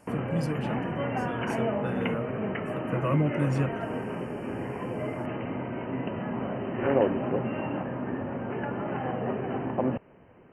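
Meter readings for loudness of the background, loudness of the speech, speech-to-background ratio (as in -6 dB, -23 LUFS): -31.5 LUFS, -32.5 LUFS, -1.0 dB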